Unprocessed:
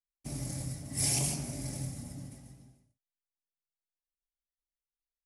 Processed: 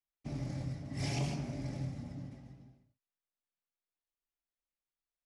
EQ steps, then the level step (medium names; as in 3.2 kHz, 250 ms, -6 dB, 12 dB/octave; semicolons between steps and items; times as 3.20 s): distance through air 210 m; bass shelf 66 Hz -6 dB; +1.0 dB